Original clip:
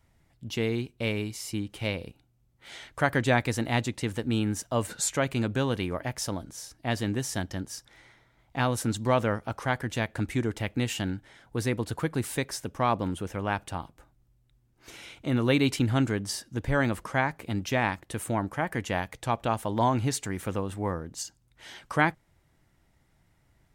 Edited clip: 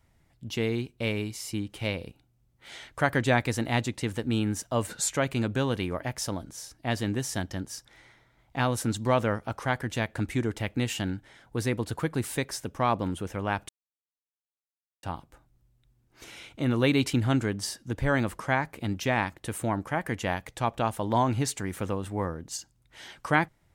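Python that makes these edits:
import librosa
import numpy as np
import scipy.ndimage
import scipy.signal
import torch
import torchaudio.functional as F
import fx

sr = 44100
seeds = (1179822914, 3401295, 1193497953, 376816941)

y = fx.edit(x, sr, fx.insert_silence(at_s=13.69, length_s=1.34), tone=tone)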